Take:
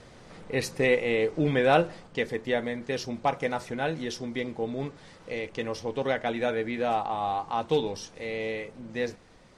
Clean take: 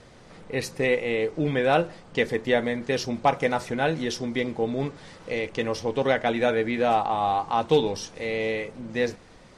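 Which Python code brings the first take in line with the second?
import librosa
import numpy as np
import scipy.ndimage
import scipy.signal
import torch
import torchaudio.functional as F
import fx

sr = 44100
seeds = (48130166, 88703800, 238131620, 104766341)

y = fx.gain(x, sr, db=fx.steps((0.0, 0.0), (2.07, 5.0)))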